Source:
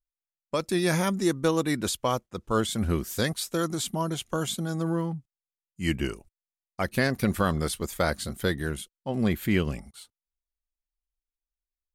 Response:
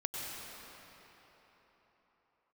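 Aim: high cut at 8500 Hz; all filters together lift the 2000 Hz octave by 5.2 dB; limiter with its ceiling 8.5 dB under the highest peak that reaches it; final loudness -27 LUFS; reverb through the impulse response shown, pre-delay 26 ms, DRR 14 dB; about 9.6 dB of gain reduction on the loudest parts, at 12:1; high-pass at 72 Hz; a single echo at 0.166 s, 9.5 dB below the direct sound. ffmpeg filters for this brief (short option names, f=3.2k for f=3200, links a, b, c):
-filter_complex "[0:a]highpass=72,lowpass=8.5k,equalizer=f=2k:t=o:g=6.5,acompressor=threshold=-28dB:ratio=12,alimiter=limit=-23.5dB:level=0:latency=1,aecho=1:1:166:0.335,asplit=2[a][b];[1:a]atrim=start_sample=2205,adelay=26[c];[b][c]afir=irnorm=-1:irlink=0,volume=-17dB[d];[a][d]amix=inputs=2:normalize=0,volume=8dB"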